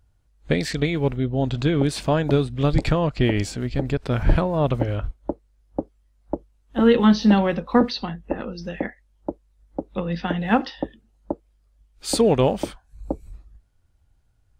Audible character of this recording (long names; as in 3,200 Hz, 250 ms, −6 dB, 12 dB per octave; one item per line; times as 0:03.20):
background noise floor −63 dBFS
spectral slope −6.0 dB per octave